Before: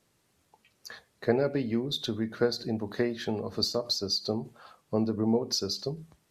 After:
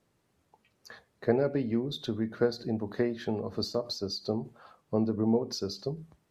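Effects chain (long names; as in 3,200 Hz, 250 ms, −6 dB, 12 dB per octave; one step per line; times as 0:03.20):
high-shelf EQ 2,200 Hz −9 dB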